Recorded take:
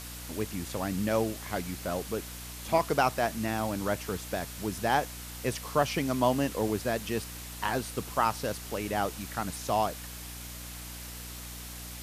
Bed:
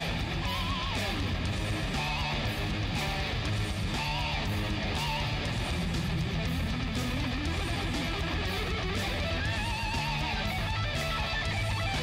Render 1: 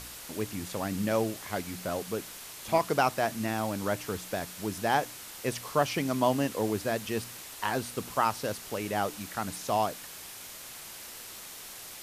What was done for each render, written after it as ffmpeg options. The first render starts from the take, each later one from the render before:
-af "bandreject=f=60:t=h:w=4,bandreject=f=120:t=h:w=4,bandreject=f=180:t=h:w=4,bandreject=f=240:t=h:w=4,bandreject=f=300:t=h:w=4"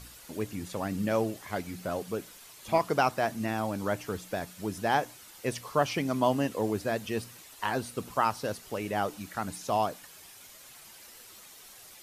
-af "afftdn=nr=9:nf=-45"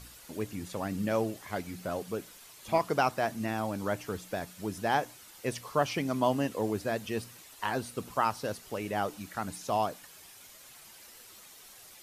-af "volume=-1.5dB"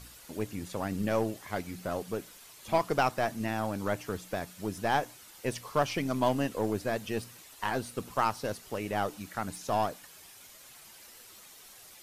-af "aeval=exprs='0.237*(cos(1*acos(clip(val(0)/0.237,-1,1)))-cos(1*PI/2))+0.00531*(cos(6*acos(clip(val(0)/0.237,-1,1)))-cos(6*PI/2))+0.0133*(cos(8*acos(clip(val(0)/0.237,-1,1)))-cos(8*PI/2))':c=same"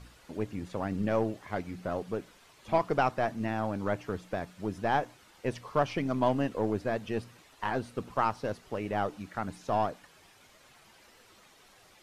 -af "aemphasis=mode=reproduction:type=75fm"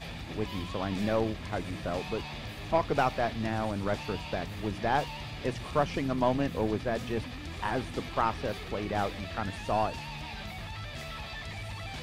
-filter_complex "[1:a]volume=-9dB[a];[0:a][a]amix=inputs=2:normalize=0"

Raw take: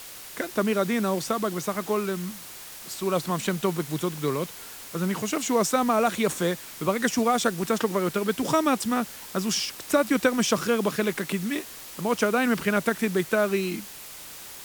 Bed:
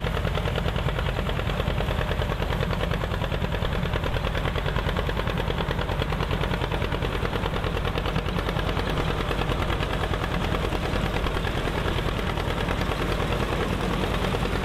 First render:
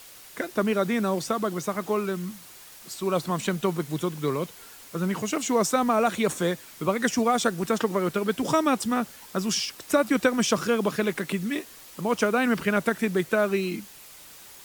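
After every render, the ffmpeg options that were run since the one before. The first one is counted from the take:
-af "afftdn=nr=6:nf=-42"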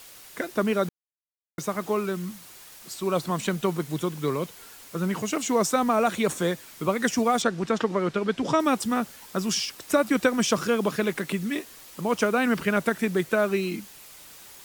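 -filter_complex "[0:a]asettb=1/sr,asplit=3[a][b][c];[a]atrim=end=7.424[d];[b]atrim=start=7.42:end=8.6,asetpts=PTS-STARTPTS,afade=t=in:d=0.004:c=qsin,afade=t=out:st=1.176:d=0.004:c=qsin,lowpass=5.4k[e];[c]atrim=start=8.596[f];[d][e]acrossfade=d=0.004:c1=hsin:c2=qsin[g];[g][f]acrossfade=d=0.004:c1=qsin:c2=hsin,asplit=3[h][i][j];[h]atrim=end=0.89,asetpts=PTS-STARTPTS,afade=t=out:st=0.886:d=0.004:c=hsin[k];[i]atrim=start=0.89:end=1.58,asetpts=PTS-STARTPTS,volume=0[l];[j]atrim=start=1.58,asetpts=PTS-STARTPTS,afade=t=in:d=0.004:c=hsin[m];[k][l][m]concat=n=3:v=0:a=1"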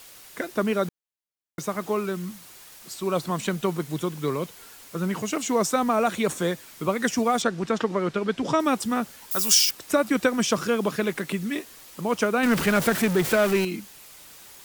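-filter_complex "[0:a]asettb=1/sr,asplit=3[a][b][c];[a]atrim=end=9.314[d];[b]atrim=start=9.31:end=9.71,asetpts=PTS-STARTPTS,afade=t=in:d=0.004:c=qsin,afade=t=out:st=0.396:d=0.004:c=qsin,aemphasis=mode=production:type=riaa[e];[c]atrim=start=9.706[f];[d][e]acrossfade=d=0.004:c1=hsin:c2=qsin[g];[g][f]acrossfade=d=0.004:c1=qsin:c2=hsin,asettb=1/sr,asplit=3[h][i][j];[h]atrim=end=12.434[k];[i]atrim=start=12.43:end=13.65,asetpts=PTS-STARTPTS,afade=t=in:d=0.004:c=qsin,afade=t=out:st=1.216:d=0.004:c=qsin,aeval=exprs='val(0)+0.5*0.0631*sgn(val(0))':c=same[l];[j]atrim=start=13.646[m];[k][l]acrossfade=d=0.004:c1=hsin:c2=qsin[n];[n][m]acrossfade=d=0.004:c1=qsin:c2=hsin"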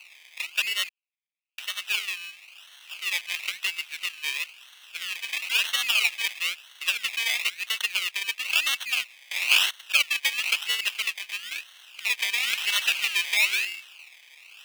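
-af "acrusher=samples=25:mix=1:aa=0.000001:lfo=1:lforange=15:lforate=1,highpass=f=2.6k:t=q:w=5.2"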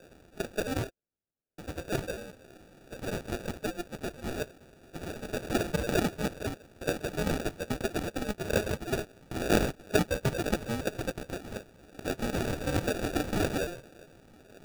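-af "flanger=delay=3:depth=7.4:regen=40:speed=0.17:shape=triangular,acrusher=samples=42:mix=1:aa=0.000001"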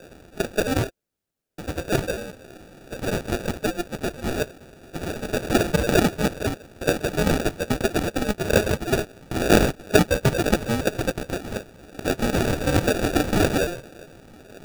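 -af "volume=9dB,alimiter=limit=-3dB:level=0:latency=1"

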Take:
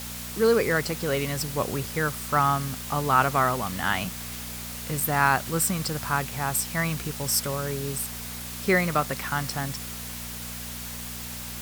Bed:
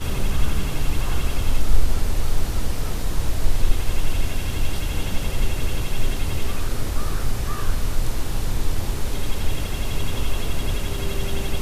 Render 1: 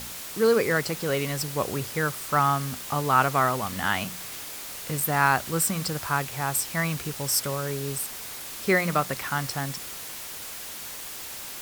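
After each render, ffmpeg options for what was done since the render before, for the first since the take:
-af "bandreject=f=60:t=h:w=4,bandreject=f=120:t=h:w=4,bandreject=f=180:t=h:w=4,bandreject=f=240:t=h:w=4"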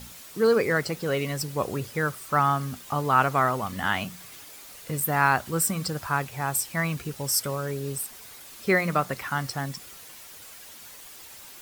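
-af "afftdn=nr=9:nf=-38"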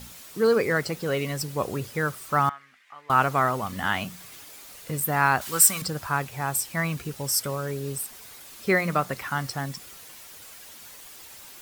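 -filter_complex "[0:a]asettb=1/sr,asplit=3[a][b][c];[a]atrim=end=2.494[d];[b]atrim=start=2.49:end=3.1,asetpts=PTS-STARTPTS,afade=t=in:d=0.004:c=qsin,afade=t=out:st=0.606:d=0.004:c=qsin,bandpass=f=2k:t=q:w=4.3[e];[c]atrim=start=3.096[f];[d][e]acrossfade=d=0.004:c1=hsin:c2=qsin[g];[g][f]acrossfade=d=0.004:c1=qsin:c2=hsin,asettb=1/sr,asplit=3[h][i][j];[h]atrim=end=5.414[k];[i]atrim=start=5.41:end=5.82,asetpts=PTS-STARTPTS,afade=t=in:d=0.004:c=qsin,afade=t=out:st=0.406:d=0.004:c=qsin,tiltshelf=f=700:g=-9[l];[j]atrim=start=5.816[m];[k][l]acrossfade=d=0.004:c1=hsin:c2=qsin[n];[n][m]acrossfade=d=0.004:c1=qsin:c2=hsin"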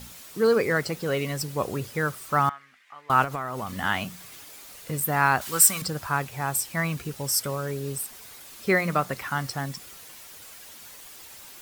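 -filter_complex "[0:a]asettb=1/sr,asplit=3[a][b][c];[a]atrim=end=3.244[d];[b]atrim=start=3.24:end=3.78,asetpts=PTS-STARTPTS,afade=t=in:d=0.004:c=qsin,afade=t=out:st=0.536:d=0.004:c=qsin,acompressor=threshold=-27dB:ratio=6:attack=3.2:release=140:knee=1:detection=peak[e];[c]atrim=start=3.776[f];[d][e]acrossfade=d=0.004:c1=hsin:c2=qsin[g];[g][f]acrossfade=d=0.004:c1=qsin:c2=hsin"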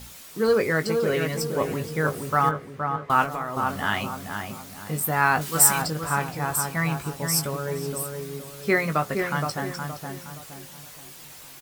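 -filter_complex "[0:a]asplit=2[a][b];[b]adelay=19,volume=-8dB[c];[a][c]amix=inputs=2:normalize=0,asplit=2[d][e];[e]adelay=469,lowpass=f=1.3k:p=1,volume=-4dB,asplit=2[f][g];[g]adelay=469,lowpass=f=1.3k:p=1,volume=0.43,asplit=2[h][i];[i]adelay=469,lowpass=f=1.3k:p=1,volume=0.43,asplit=2[j][k];[k]adelay=469,lowpass=f=1.3k:p=1,volume=0.43,asplit=2[l][m];[m]adelay=469,lowpass=f=1.3k:p=1,volume=0.43[n];[d][f][h][j][l][n]amix=inputs=6:normalize=0"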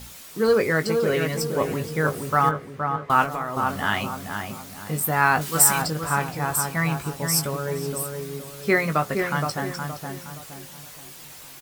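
-af "volume=1.5dB,alimiter=limit=-3dB:level=0:latency=1"

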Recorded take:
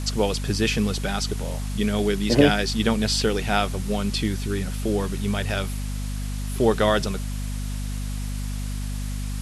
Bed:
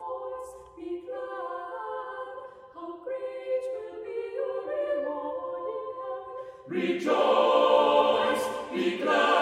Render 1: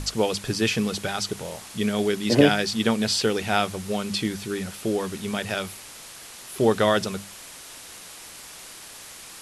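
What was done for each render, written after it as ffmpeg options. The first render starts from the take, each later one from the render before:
-af "bandreject=f=50:t=h:w=6,bandreject=f=100:t=h:w=6,bandreject=f=150:t=h:w=6,bandreject=f=200:t=h:w=6,bandreject=f=250:t=h:w=6"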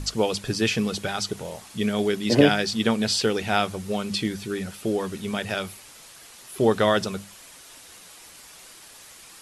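-af "afftdn=nr=6:nf=-43"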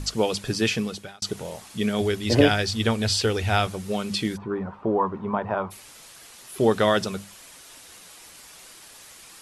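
-filter_complex "[0:a]asettb=1/sr,asplit=3[a][b][c];[a]atrim=end=2.014[d];[b]atrim=start=2.01:end=3.67,asetpts=PTS-STARTPTS,afade=t=in:d=0.004:c=qsin,afade=t=out:st=1.656:d=0.004:c=qsin,lowshelf=f=120:t=q:w=3:g=8[e];[c]atrim=start=3.666[f];[d][e]acrossfade=d=0.004:c1=hsin:c2=qsin[g];[g][f]acrossfade=d=0.004:c1=qsin:c2=hsin,asplit=3[h][i][j];[h]afade=t=out:st=4.36:d=0.02[k];[i]lowpass=f=1k:t=q:w=6.4,afade=t=in:st=4.36:d=0.02,afade=t=out:st=5.7:d=0.02[l];[j]afade=t=in:st=5.7:d=0.02[m];[k][l][m]amix=inputs=3:normalize=0,asplit=2[n][o];[n]atrim=end=1.22,asetpts=PTS-STARTPTS,afade=t=out:st=0.69:d=0.53[p];[o]atrim=start=1.22,asetpts=PTS-STARTPTS,afade=t=in:d=0.004:c=hsin[q];[p][q]concat=n=2:v=0:a=1"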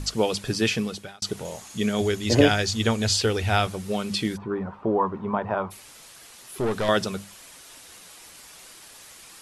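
-filter_complex "[0:a]asettb=1/sr,asplit=3[a][b][c];[a]atrim=end=1.454[d];[b]atrim=start=1.45:end=3.17,asetpts=PTS-STARTPTS,afade=t=in:d=0.004:c=qsin,afade=t=out:st=1.716:d=0.004:c=qsin,equalizer=f=6.7k:w=7.2:g=11[e];[c]atrim=start=3.166[f];[d][e]acrossfade=d=0.004:c1=hsin:c2=qsin[g];[g][f]acrossfade=d=0.004:c1=qsin:c2=hsin,asettb=1/sr,asplit=3[h][i][j];[h]atrim=end=5.724[k];[i]atrim=start=5.72:end=6.89,asetpts=PTS-STARTPTS,afade=t=in:d=0.004:c=qsin,afade=t=out:st=1.166:d=0.004:c=qsin,aeval=exprs='(tanh(11.2*val(0)+0.25)-tanh(0.25))/11.2':c=same[l];[j]atrim=start=6.886[m];[k][l]acrossfade=d=0.004:c1=hsin:c2=qsin[n];[n][m]acrossfade=d=0.004:c1=qsin:c2=hsin"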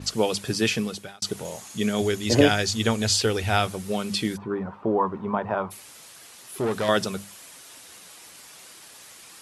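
-af "highpass=88,adynamicequalizer=threshold=0.00708:dfrequency=7100:dqfactor=0.7:tfrequency=7100:tqfactor=0.7:attack=5:release=100:ratio=0.375:range=2:mode=boostabove:tftype=highshelf"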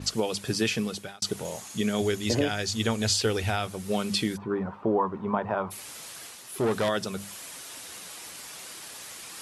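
-af "alimiter=limit=-14.5dB:level=0:latency=1:release=367,areverse,acompressor=mode=upward:threshold=-35dB:ratio=2.5,areverse"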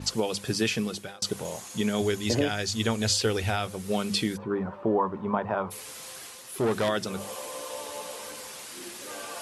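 -filter_complex "[1:a]volume=-18dB[a];[0:a][a]amix=inputs=2:normalize=0"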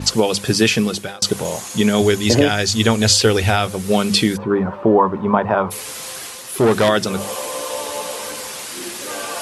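-af "volume=11.5dB"

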